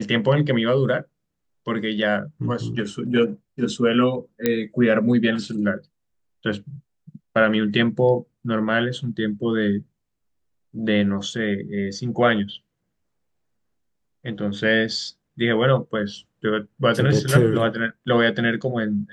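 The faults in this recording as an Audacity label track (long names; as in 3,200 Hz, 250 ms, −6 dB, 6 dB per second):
4.460000	4.460000	click −6 dBFS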